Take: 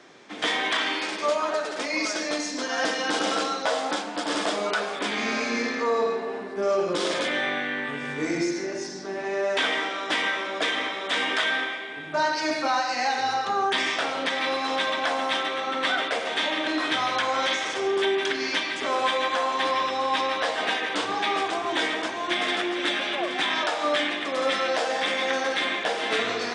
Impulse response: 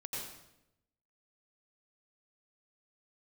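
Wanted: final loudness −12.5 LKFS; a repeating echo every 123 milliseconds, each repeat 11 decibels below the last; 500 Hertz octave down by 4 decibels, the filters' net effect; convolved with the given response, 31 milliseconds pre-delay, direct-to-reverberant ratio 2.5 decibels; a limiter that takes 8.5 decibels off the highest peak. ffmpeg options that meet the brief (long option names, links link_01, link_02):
-filter_complex "[0:a]equalizer=frequency=500:width_type=o:gain=-5,alimiter=limit=-20.5dB:level=0:latency=1,aecho=1:1:123|246|369:0.282|0.0789|0.0221,asplit=2[link_01][link_02];[1:a]atrim=start_sample=2205,adelay=31[link_03];[link_02][link_03]afir=irnorm=-1:irlink=0,volume=-3dB[link_04];[link_01][link_04]amix=inputs=2:normalize=0,volume=14.5dB"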